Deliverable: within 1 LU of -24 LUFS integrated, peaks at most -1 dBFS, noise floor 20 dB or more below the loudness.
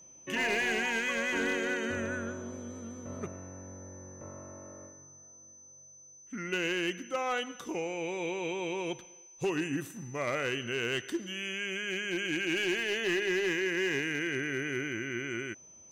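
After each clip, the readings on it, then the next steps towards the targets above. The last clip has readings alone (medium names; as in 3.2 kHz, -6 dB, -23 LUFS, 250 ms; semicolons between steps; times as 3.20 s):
clipped samples 0.9%; clipping level -24.5 dBFS; steady tone 6.1 kHz; tone level -52 dBFS; loudness -32.5 LUFS; peak level -24.5 dBFS; loudness target -24.0 LUFS
-> clip repair -24.5 dBFS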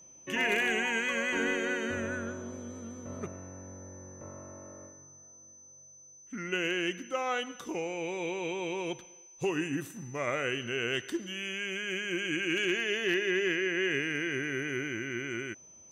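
clipped samples 0.0%; steady tone 6.1 kHz; tone level -52 dBFS
-> band-stop 6.1 kHz, Q 30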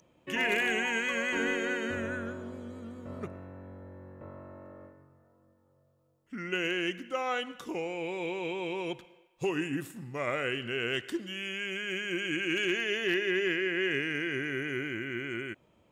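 steady tone not found; loudness -32.0 LUFS; peak level -15.5 dBFS; loudness target -24.0 LUFS
-> trim +8 dB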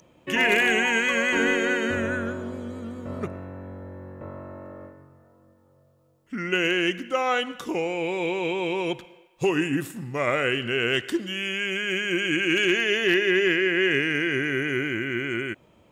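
loudness -24.0 LUFS; peak level -7.5 dBFS; noise floor -60 dBFS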